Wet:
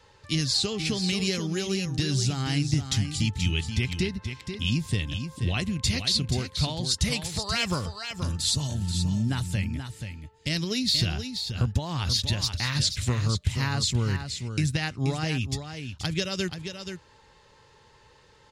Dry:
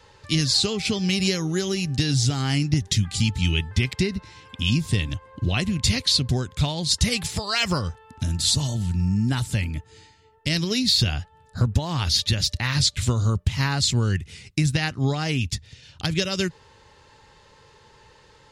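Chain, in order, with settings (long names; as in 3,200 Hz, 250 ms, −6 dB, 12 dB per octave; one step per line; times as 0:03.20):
single-tap delay 480 ms −8 dB
level −4.5 dB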